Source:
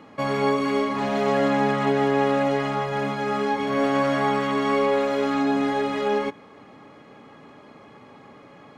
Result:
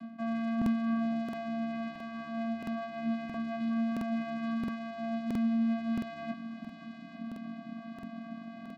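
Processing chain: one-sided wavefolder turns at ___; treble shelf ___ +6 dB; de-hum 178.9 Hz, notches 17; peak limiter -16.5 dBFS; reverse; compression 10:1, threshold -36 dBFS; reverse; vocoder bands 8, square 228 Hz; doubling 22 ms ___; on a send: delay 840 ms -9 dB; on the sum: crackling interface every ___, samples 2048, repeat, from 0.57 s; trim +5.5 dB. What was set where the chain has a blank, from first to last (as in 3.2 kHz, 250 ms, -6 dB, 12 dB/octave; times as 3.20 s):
-20 dBFS, 5.3 kHz, -5.5 dB, 0.67 s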